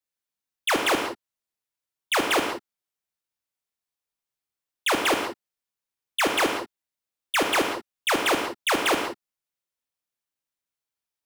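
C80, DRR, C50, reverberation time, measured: 7.0 dB, 2.5 dB, 5.0 dB, no single decay rate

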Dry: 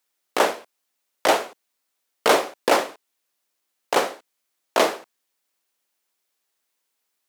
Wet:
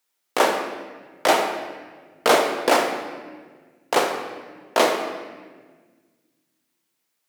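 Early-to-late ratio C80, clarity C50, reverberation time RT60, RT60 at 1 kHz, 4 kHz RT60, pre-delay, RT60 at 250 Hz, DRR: 7.0 dB, 5.5 dB, 1.5 s, 1.3 s, 1.1 s, 4 ms, 2.2 s, 3.0 dB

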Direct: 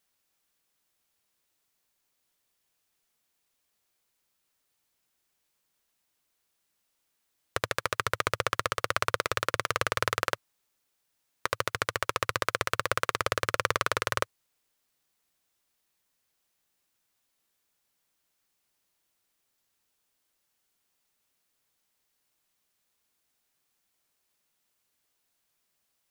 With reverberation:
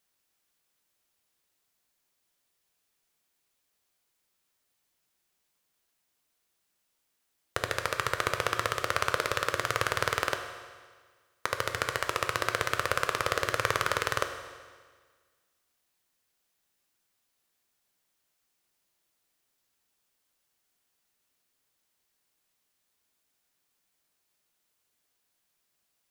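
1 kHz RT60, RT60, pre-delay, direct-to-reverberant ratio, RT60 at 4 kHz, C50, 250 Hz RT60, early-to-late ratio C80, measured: 1.6 s, 1.6 s, 11 ms, 5.5 dB, 1.5 s, 7.5 dB, 1.6 s, 9.0 dB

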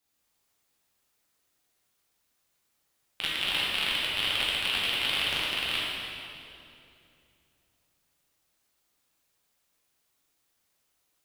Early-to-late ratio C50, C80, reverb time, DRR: -2.5 dB, -1.0 dB, 2.7 s, -6.5 dB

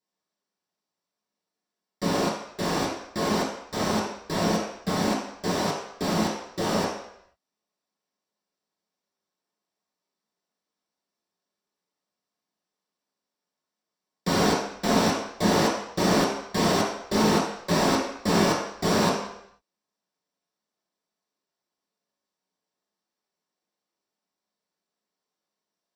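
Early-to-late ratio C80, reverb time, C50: 6.0 dB, 0.75 s, 2.5 dB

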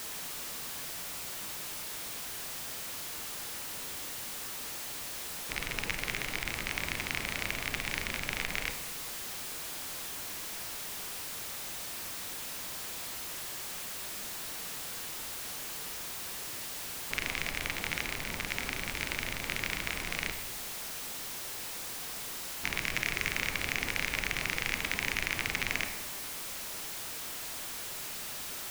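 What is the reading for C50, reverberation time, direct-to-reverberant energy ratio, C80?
8.5 dB, 1.1 s, 7.0 dB, 10.5 dB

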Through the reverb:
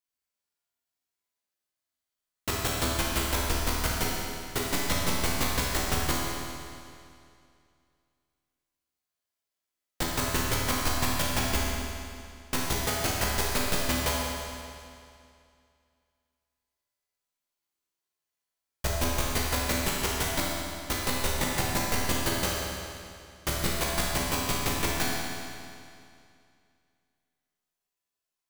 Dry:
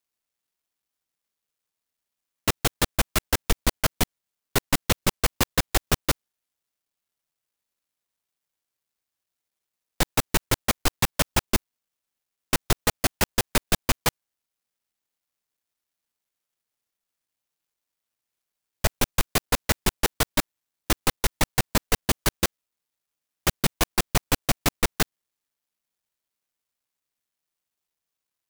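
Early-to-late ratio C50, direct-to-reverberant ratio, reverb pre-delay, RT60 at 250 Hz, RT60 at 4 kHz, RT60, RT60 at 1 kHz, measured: -2.0 dB, -5.5 dB, 12 ms, 2.4 s, 2.3 s, 2.4 s, 2.4 s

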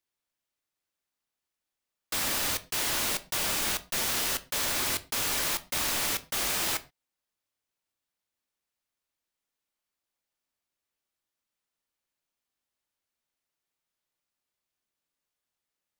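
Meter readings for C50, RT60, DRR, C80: 18.5 dB, no single decay rate, 11.0 dB, 24.0 dB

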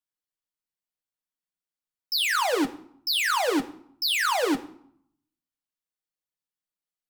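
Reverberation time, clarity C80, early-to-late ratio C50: 0.65 s, 17.5 dB, 15.0 dB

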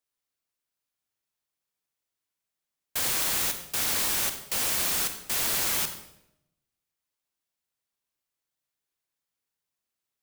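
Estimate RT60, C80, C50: 0.80 s, 11.5 dB, 9.0 dB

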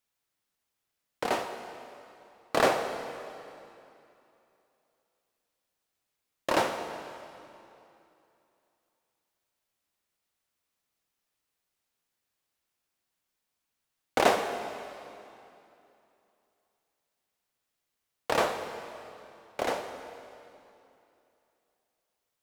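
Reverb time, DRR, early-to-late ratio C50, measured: 2.8 s, 6.5 dB, 8.0 dB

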